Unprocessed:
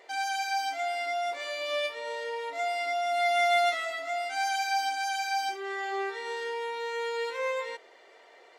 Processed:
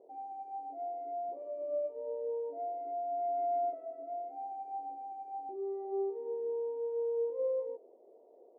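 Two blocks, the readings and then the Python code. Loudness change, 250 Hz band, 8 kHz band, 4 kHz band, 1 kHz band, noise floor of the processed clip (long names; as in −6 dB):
−7.5 dB, can't be measured, below −40 dB, below −40 dB, −8.5 dB, −60 dBFS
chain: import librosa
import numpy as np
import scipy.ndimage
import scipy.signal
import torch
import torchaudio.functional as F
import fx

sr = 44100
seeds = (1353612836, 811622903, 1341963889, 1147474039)

y = scipy.signal.sosfilt(scipy.signal.cheby2(4, 50, 1500.0, 'lowpass', fs=sr, output='sos'), x)
y = F.gain(torch.from_numpy(y), 1.5).numpy()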